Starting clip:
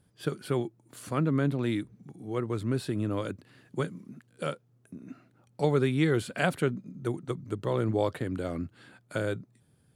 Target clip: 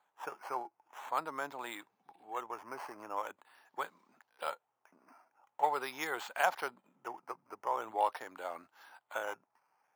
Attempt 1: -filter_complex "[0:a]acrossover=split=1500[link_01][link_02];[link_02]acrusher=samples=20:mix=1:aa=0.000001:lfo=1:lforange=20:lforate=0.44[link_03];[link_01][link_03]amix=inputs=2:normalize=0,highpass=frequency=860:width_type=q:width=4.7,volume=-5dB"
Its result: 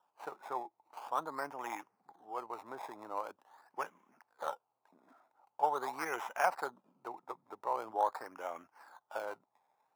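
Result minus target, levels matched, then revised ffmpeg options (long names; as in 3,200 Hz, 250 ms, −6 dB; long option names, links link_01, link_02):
sample-and-hold swept by an LFO: distortion +24 dB
-filter_complex "[0:a]acrossover=split=1500[link_01][link_02];[link_02]acrusher=samples=8:mix=1:aa=0.000001:lfo=1:lforange=8:lforate=0.44[link_03];[link_01][link_03]amix=inputs=2:normalize=0,highpass=frequency=860:width_type=q:width=4.7,volume=-5dB"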